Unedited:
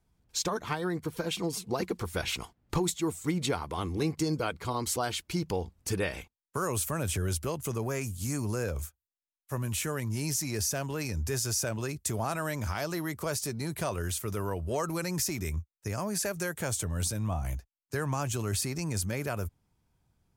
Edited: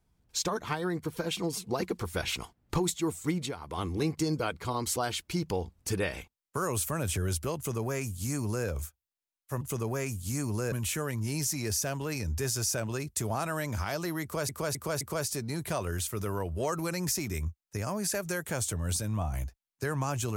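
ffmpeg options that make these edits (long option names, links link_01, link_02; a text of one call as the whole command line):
ffmpeg -i in.wav -filter_complex "[0:a]asplit=7[link_01][link_02][link_03][link_04][link_05][link_06][link_07];[link_01]atrim=end=3.56,asetpts=PTS-STARTPTS,afade=type=out:start_time=3.32:duration=0.24:silence=0.298538[link_08];[link_02]atrim=start=3.56:end=9.612,asetpts=PTS-STARTPTS,afade=type=in:duration=0.24:silence=0.298538[link_09];[link_03]atrim=start=7.558:end=8.672[link_10];[link_04]atrim=start=9.608:end=13.382[link_11];[link_05]atrim=start=13.118:end=13.382[link_12];[link_06]atrim=start=13.118:end=13.382[link_13];[link_07]atrim=start=13.118[link_14];[link_08][link_09]concat=n=2:v=0:a=1[link_15];[link_15][link_10]acrossfade=duration=0.004:curve1=hsin:curve2=hsin[link_16];[link_16][link_11]acrossfade=duration=0.004:curve1=hsin:curve2=hsin[link_17];[link_17][link_12]acrossfade=duration=0.004:curve1=hsin:curve2=hsin[link_18];[link_18][link_13]acrossfade=duration=0.004:curve1=hsin:curve2=hsin[link_19];[link_19][link_14]acrossfade=duration=0.004:curve1=hsin:curve2=hsin" out.wav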